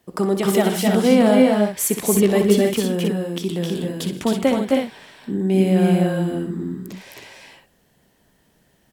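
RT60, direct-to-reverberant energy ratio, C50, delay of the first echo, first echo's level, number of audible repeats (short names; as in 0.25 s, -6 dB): none, none, none, 63 ms, -10.0 dB, 5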